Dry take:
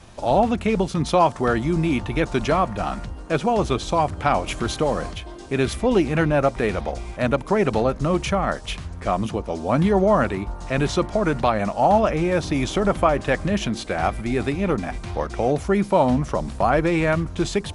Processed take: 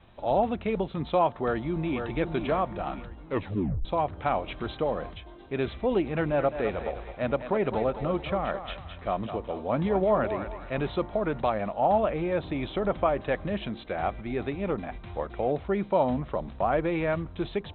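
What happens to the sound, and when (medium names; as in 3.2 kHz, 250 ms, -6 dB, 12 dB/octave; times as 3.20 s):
1.29–2.04 s: echo throw 520 ms, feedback 45%, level -7 dB
3.22 s: tape stop 0.63 s
6.05–10.89 s: thinning echo 211 ms, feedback 48%, level -8 dB
whole clip: Chebyshev low-pass 3.9 kHz, order 8; dynamic bell 540 Hz, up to +4 dB, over -31 dBFS, Q 1; trim -9 dB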